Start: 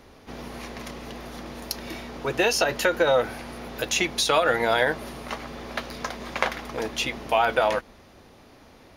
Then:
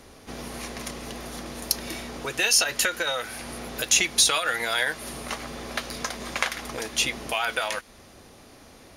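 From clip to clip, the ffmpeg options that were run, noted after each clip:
ffmpeg -i in.wav -filter_complex "[0:a]equalizer=frequency=9000:width=0.84:gain=11,bandreject=frequency=910:width=21,acrossover=split=1300[link_01][link_02];[link_01]acompressor=threshold=-33dB:ratio=6[link_03];[link_03][link_02]amix=inputs=2:normalize=0,volume=1dB" out.wav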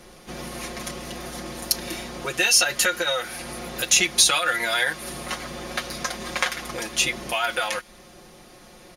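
ffmpeg -i in.wav -af "aecho=1:1:5.6:0.86" out.wav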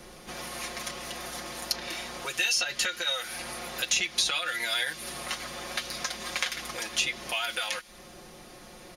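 ffmpeg -i in.wav -filter_complex "[0:a]acrossover=split=590|2300|6000[link_01][link_02][link_03][link_04];[link_01]acompressor=threshold=-47dB:ratio=4[link_05];[link_02]acompressor=threshold=-38dB:ratio=4[link_06];[link_03]acompressor=threshold=-26dB:ratio=4[link_07];[link_04]acompressor=threshold=-41dB:ratio=4[link_08];[link_05][link_06][link_07][link_08]amix=inputs=4:normalize=0" out.wav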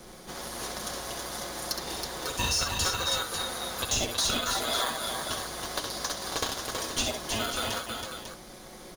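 ffmpeg -i in.wav -filter_complex "[0:a]acrossover=split=2900[link_01][link_02];[link_01]acrusher=samples=16:mix=1:aa=0.000001[link_03];[link_02]volume=22.5dB,asoftclip=hard,volume=-22.5dB[link_04];[link_03][link_04]amix=inputs=2:normalize=0,aecho=1:1:66|323|547:0.473|0.562|0.376" out.wav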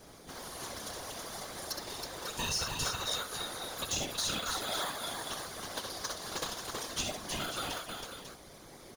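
ffmpeg -i in.wav -af "afftfilt=real='hypot(re,im)*cos(2*PI*random(0))':imag='hypot(re,im)*sin(2*PI*random(1))':win_size=512:overlap=0.75" out.wav

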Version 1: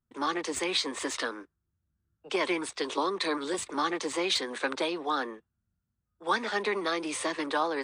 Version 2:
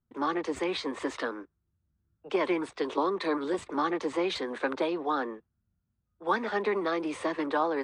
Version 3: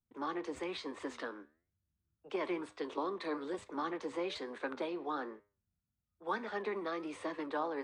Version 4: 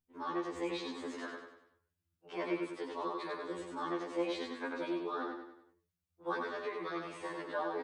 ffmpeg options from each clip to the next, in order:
ffmpeg -i in.wav -af "lowpass=frequency=1100:poles=1,volume=3dB" out.wav
ffmpeg -i in.wav -af "flanger=delay=9.7:depth=4.7:regen=83:speed=1.1:shape=sinusoidal,volume=-4.5dB" out.wav
ffmpeg -i in.wav -af "aecho=1:1:96|192|288|384|480:0.631|0.271|0.117|0.0502|0.0216,afftfilt=real='re*2*eq(mod(b,4),0)':imag='im*2*eq(mod(b,4),0)':win_size=2048:overlap=0.75,volume=1dB" out.wav

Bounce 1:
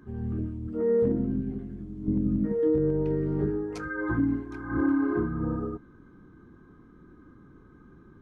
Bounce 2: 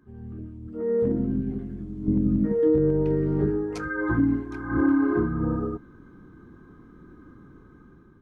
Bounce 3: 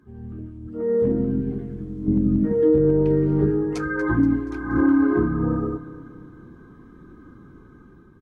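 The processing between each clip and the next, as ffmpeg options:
ffmpeg -i in.wav -af "dynaudnorm=framelen=390:gausssize=5:maxgain=11.5dB,volume=-7.5dB" out.wav
ffmpeg -i in.wav -af "aecho=1:1:238|476|714|952|1190:0.158|0.084|0.0445|0.0236|0.0125,volume=3dB" -ar 48000 -c:a libvorbis -b:a 48k out.ogg

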